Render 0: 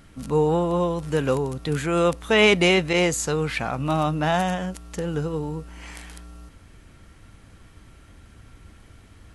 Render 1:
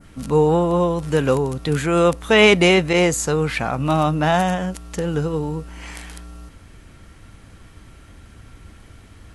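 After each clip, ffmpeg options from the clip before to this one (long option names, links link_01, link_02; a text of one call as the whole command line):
ffmpeg -i in.wav -af "adynamicequalizer=threshold=0.0141:dfrequency=3600:dqfactor=0.75:tfrequency=3600:tqfactor=0.75:attack=5:release=100:ratio=0.375:range=2:mode=cutabove:tftype=bell,volume=4.5dB" out.wav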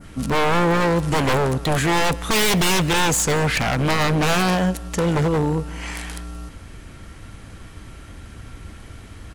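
ffmpeg -i in.wav -af "aeval=exprs='0.891*(cos(1*acos(clip(val(0)/0.891,-1,1)))-cos(1*PI/2))+0.251*(cos(4*acos(clip(val(0)/0.891,-1,1)))-cos(4*PI/2))+0.141*(cos(5*acos(clip(val(0)/0.891,-1,1)))-cos(5*PI/2))':channel_layout=same,aeval=exprs='0.2*(abs(mod(val(0)/0.2+3,4)-2)-1)':channel_layout=same,aecho=1:1:175:0.0891" out.wav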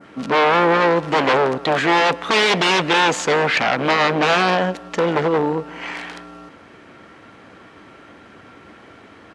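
ffmpeg -i in.wav -filter_complex "[0:a]asplit=2[link_01][link_02];[link_02]adynamicsmooth=sensitivity=6:basefreq=2200,volume=0dB[link_03];[link_01][link_03]amix=inputs=2:normalize=0,highpass=320,lowpass=4400,volume=-1dB" out.wav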